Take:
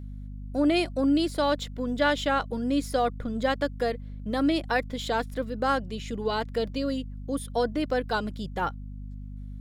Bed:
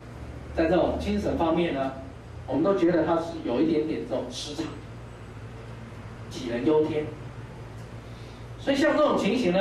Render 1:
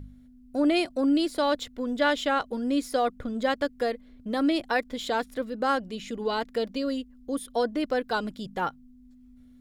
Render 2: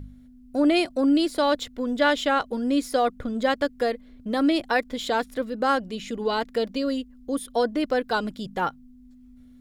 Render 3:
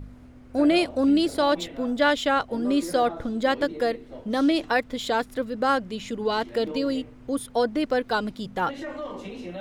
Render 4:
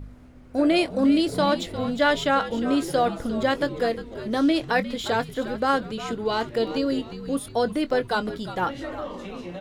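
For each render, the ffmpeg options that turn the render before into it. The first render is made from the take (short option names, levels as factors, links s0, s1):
-af "bandreject=f=50:t=h:w=4,bandreject=f=100:t=h:w=4,bandreject=f=150:t=h:w=4,bandreject=f=200:t=h:w=4"
-af "volume=1.41"
-filter_complex "[1:a]volume=0.224[s0];[0:a][s0]amix=inputs=2:normalize=0"
-filter_complex "[0:a]asplit=2[s0][s1];[s1]adelay=22,volume=0.211[s2];[s0][s2]amix=inputs=2:normalize=0,asplit=5[s3][s4][s5][s6][s7];[s4]adelay=354,afreqshift=-85,volume=0.237[s8];[s5]adelay=708,afreqshift=-170,volume=0.107[s9];[s6]adelay=1062,afreqshift=-255,volume=0.0479[s10];[s7]adelay=1416,afreqshift=-340,volume=0.0216[s11];[s3][s8][s9][s10][s11]amix=inputs=5:normalize=0"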